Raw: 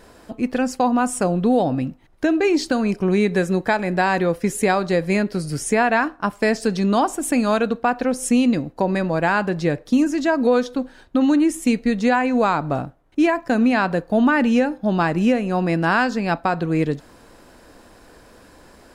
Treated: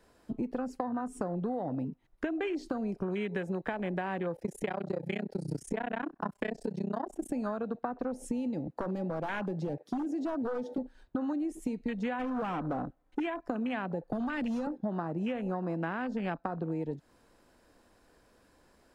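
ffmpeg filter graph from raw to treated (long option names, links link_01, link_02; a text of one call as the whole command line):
ffmpeg -i in.wav -filter_complex "[0:a]asettb=1/sr,asplit=3[link_01][link_02][link_03];[link_01]atrim=end=4.364[link_04];[link_02]atrim=start=4.36:end=7.3,asetpts=PTS-STARTPTS,afade=type=in:duration=0.004:curve=qsin,afade=type=out:start_time=2.936:duration=0.004:curve=qsin,tremolo=f=31:d=1,bandreject=frequency=1200:width=10,acontrast=32[link_05];[link_03]atrim=start=7.296[link_06];[link_04][link_05]acrossfade=duration=0.004:curve1=hsin:curve2=qsin[link_07];[link_07][link_06]acrossfade=duration=0.004:curve1=qsin:curve2=hsin,asettb=1/sr,asplit=3[link_08][link_09][link_10];[link_08]atrim=end=8.674[link_11];[link_09]atrim=start=8.67:end=10.78,asetpts=PTS-STARTPTS,afade=type=in:duration=0.004:curve=qsin,afade=type=out:start_time=2.106:duration=0.004:curve=qsin,highpass=frequency=130:width=0.5412,highpass=frequency=130:width=1.3066,acompressor=threshold=-29dB:ratio=1.5:attack=3.2:release=140:knee=1:detection=peak,aeval=exprs='0.1*(abs(mod(val(0)/0.1+3,4)-2)-1)':channel_layout=same[link_12];[link_10]atrim=start=10.776[link_13];[link_11][link_12]acrossfade=duration=0.004:curve1=hsin:curve2=qsin[link_14];[link_14][link_13]acrossfade=duration=0.004:curve1=qsin:curve2=hsin,asettb=1/sr,asplit=3[link_15][link_16][link_17];[link_15]atrim=end=12.194[link_18];[link_16]atrim=start=12.19:end=13.2,asetpts=PTS-STARTPTS,afade=type=in:duration=0.004:curve=qsin,afade=type=out:start_time=1.006:duration=0.004:curve=qsin,aecho=1:1:3.9:0.41,atrim=end_sample=44541,acontrast=25,volume=16.5dB,asoftclip=hard,volume=-16.5dB[link_19];[link_17]atrim=start=13.196[link_20];[link_18][link_19]acrossfade=duration=0.004:curve1=hsin:curve2=qsin[link_21];[link_21][link_20]acrossfade=duration=0.004:curve1=qsin:curve2=hsin,asettb=1/sr,asplit=3[link_22][link_23][link_24];[link_22]atrim=end=14.124[link_25];[link_23]atrim=start=14.12:end=14.67,asetpts=PTS-STARTPTS,afade=type=in:duration=0.004:curve=qsin,afade=type=out:start_time=0.546:duration=0.004:curve=qsin,equalizer=frequency=4800:width=2.4:gain=6,acrossover=split=150|3000[link_26][link_27][link_28];[link_27]acompressor=threshold=-36dB:ratio=2.5:attack=3.2:release=140:knee=2.83:detection=peak[link_29];[link_26][link_29][link_28]amix=inputs=3:normalize=0,aeval=exprs='0.141*sin(PI/2*1.78*val(0)/0.141)':channel_layout=same[link_30];[link_24]atrim=start=14.666[link_31];[link_25][link_30]acrossfade=duration=0.004:curve1=hsin:curve2=qsin[link_32];[link_32][link_31]acrossfade=duration=0.004:curve1=qsin:curve2=hsin,acrossover=split=160|560[link_33][link_34][link_35];[link_33]acompressor=threshold=-36dB:ratio=4[link_36];[link_34]acompressor=threshold=-25dB:ratio=4[link_37];[link_35]acompressor=threshold=-25dB:ratio=4[link_38];[link_36][link_37][link_38]amix=inputs=3:normalize=0,afwtdn=0.0355,acompressor=threshold=-31dB:ratio=6" out.wav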